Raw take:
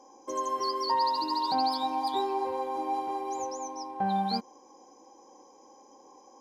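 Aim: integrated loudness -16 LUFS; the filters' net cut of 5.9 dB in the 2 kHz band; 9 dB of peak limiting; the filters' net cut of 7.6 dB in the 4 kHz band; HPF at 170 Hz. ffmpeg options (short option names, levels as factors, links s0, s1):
-af "highpass=170,equalizer=f=2000:t=o:g=-6,equalizer=f=4000:t=o:g=-8,volume=8.91,alimiter=limit=0.398:level=0:latency=1"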